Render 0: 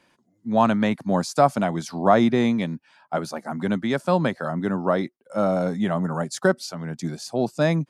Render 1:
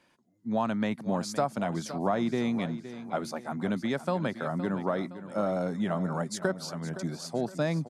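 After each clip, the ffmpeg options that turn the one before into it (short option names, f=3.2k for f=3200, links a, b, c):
-af "acompressor=threshold=-21dB:ratio=3,aecho=1:1:516|1032|1548|2064:0.224|0.094|0.0395|0.0166,volume=-4.5dB"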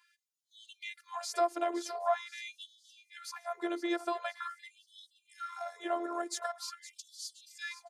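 -af "afftfilt=real='hypot(re,im)*cos(PI*b)':imag='0':win_size=512:overlap=0.75,afftfilt=real='re*gte(b*sr/1024,260*pow(3000/260,0.5+0.5*sin(2*PI*0.45*pts/sr)))':imag='im*gte(b*sr/1024,260*pow(3000/260,0.5+0.5*sin(2*PI*0.45*pts/sr)))':win_size=1024:overlap=0.75,volume=2dB"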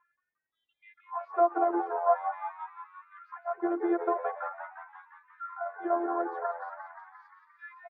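-filter_complex "[0:a]lowpass=f=1.3k:w=0.5412,lowpass=f=1.3k:w=1.3066,asplit=2[a][b];[b]asplit=8[c][d][e][f][g][h][i][j];[c]adelay=175,afreqshift=83,volume=-9dB[k];[d]adelay=350,afreqshift=166,volume=-13.3dB[l];[e]adelay=525,afreqshift=249,volume=-17.6dB[m];[f]adelay=700,afreqshift=332,volume=-21.9dB[n];[g]adelay=875,afreqshift=415,volume=-26.2dB[o];[h]adelay=1050,afreqshift=498,volume=-30.5dB[p];[i]adelay=1225,afreqshift=581,volume=-34.8dB[q];[j]adelay=1400,afreqshift=664,volume=-39.1dB[r];[k][l][m][n][o][p][q][r]amix=inputs=8:normalize=0[s];[a][s]amix=inputs=2:normalize=0,volume=5.5dB"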